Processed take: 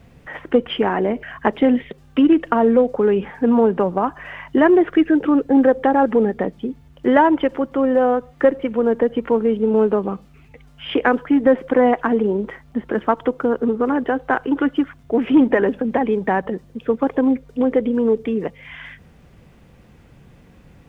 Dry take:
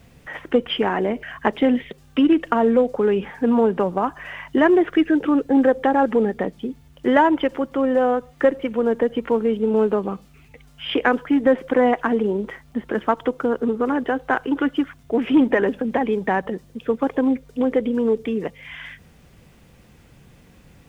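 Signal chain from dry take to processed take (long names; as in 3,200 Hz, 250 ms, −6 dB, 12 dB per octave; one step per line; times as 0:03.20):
high-shelf EQ 3,200 Hz −9.5 dB
level +2.5 dB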